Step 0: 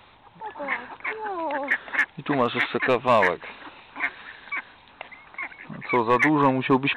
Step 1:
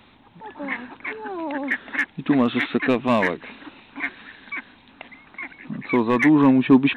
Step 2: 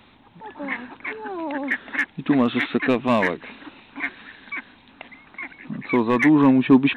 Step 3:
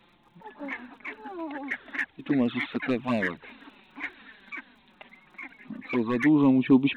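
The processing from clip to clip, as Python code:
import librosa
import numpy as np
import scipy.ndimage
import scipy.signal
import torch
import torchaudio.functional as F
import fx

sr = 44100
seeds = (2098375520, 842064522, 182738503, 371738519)

y1 = fx.graphic_eq(x, sr, hz=(250, 500, 1000), db=(11, -3, -4))
y2 = y1
y3 = fx.dmg_crackle(y2, sr, seeds[0], per_s=26.0, level_db=-46.0)
y3 = fx.env_flanger(y3, sr, rest_ms=6.0, full_db=-13.0)
y3 = y3 * librosa.db_to_amplitude(-4.5)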